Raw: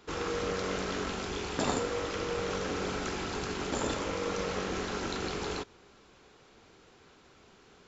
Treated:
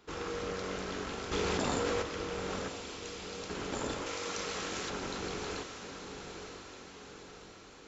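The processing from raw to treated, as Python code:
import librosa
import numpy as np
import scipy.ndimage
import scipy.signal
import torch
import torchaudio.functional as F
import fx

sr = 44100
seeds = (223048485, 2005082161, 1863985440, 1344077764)

y = fx.cheby2_highpass(x, sr, hz=950.0, order=4, stop_db=50, at=(2.68, 3.5))
y = fx.tilt_eq(y, sr, slope=3.0, at=(4.06, 4.9))
y = fx.echo_diffused(y, sr, ms=944, feedback_pct=55, wet_db=-7.5)
y = fx.env_flatten(y, sr, amount_pct=100, at=(1.31, 2.01), fade=0.02)
y = y * 10.0 ** (-4.5 / 20.0)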